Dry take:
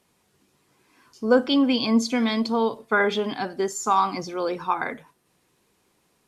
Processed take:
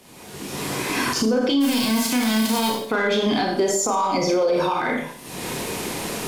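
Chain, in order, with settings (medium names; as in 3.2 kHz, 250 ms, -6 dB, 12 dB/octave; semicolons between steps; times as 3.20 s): 1.60–2.69 s: formants flattened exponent 0.3; recorder AGC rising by 48 dB/s; in parallel at -7 dB: saturation -22 dBFS, distortion -9 dB; 3.60–4.70 s: on the sum: peaking EQ 580 Hz +11.5 dB 0.55 oct; Schroeder reverb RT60 0.51 s, combs from 25 ms, DRR 1 dB; peak limiter -12 dBFS, peak gain reduction 10.5 dB; peaking EQ 1.3 kHz -4 dB 0.77 oct; three bands compressed up and down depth 40%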